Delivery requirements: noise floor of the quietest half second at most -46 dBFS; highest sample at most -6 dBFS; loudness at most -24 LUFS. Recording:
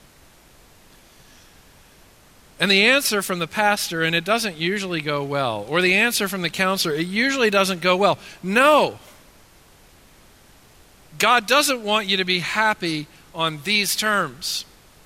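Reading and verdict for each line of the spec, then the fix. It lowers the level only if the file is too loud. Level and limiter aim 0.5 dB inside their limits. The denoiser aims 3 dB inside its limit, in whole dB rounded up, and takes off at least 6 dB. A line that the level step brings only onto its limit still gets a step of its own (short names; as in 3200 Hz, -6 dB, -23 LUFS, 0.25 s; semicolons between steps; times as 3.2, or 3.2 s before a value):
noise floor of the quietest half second -51 dBFS: OK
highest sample -3.0 dBFS: fail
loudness -19.5 LUFS: fail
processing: gain -5 dB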